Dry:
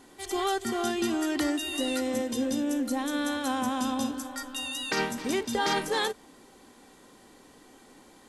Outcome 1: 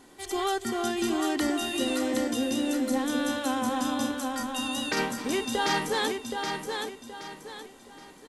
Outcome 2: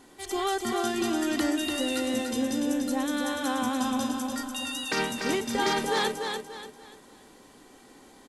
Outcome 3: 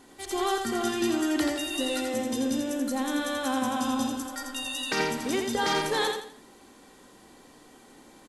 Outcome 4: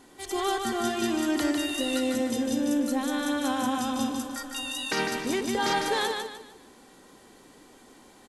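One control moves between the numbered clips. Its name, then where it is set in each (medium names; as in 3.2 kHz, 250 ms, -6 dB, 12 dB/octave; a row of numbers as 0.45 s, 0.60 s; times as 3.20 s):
feedback delay, time: 773 ms, 292 ms, 84 ms, 151 ms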